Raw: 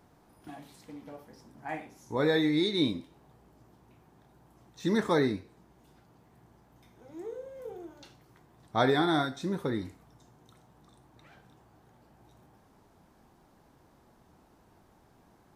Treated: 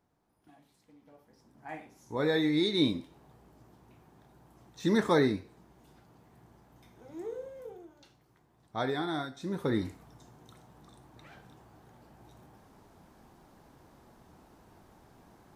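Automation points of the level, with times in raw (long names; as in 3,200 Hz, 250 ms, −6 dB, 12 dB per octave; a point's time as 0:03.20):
0:00.97 −14 dB
0:01.60 −6 dB
0:02.86 +1 dB
0:07.44 +1 dB
0:07.88 −7 dB
0:09.33 −7 dB
0:09.77 +3.5 dB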